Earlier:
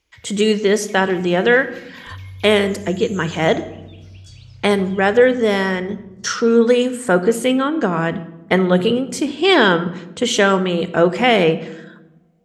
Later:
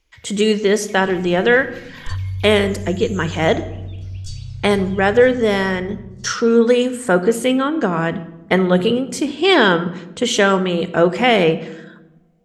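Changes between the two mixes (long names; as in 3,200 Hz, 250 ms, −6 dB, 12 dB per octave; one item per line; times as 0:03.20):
second sound +10.0 dB
master: remove high-pass filter 53 Hz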